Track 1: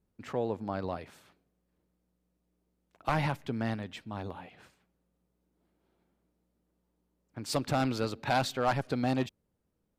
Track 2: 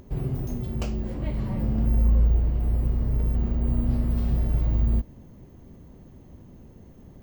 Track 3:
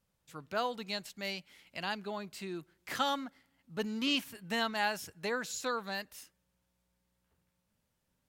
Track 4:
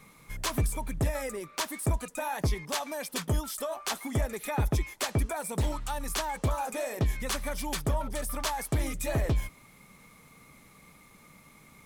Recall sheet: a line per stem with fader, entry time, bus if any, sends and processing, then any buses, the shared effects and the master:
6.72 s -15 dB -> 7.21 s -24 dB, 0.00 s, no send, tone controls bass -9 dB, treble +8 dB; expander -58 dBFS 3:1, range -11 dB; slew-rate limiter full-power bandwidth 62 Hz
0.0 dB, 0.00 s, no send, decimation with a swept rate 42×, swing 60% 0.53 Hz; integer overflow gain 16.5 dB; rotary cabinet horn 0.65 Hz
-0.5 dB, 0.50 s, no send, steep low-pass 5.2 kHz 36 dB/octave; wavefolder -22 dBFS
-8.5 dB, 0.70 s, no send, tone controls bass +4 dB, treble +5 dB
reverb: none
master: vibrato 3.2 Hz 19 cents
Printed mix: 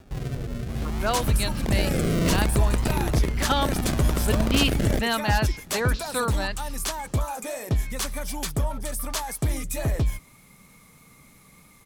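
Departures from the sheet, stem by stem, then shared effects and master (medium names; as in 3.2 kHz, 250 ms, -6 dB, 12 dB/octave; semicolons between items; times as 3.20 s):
stem 3 -0.5 dB -> +7.5 dB; stem 4 -8.5 dB -> 0.0 dB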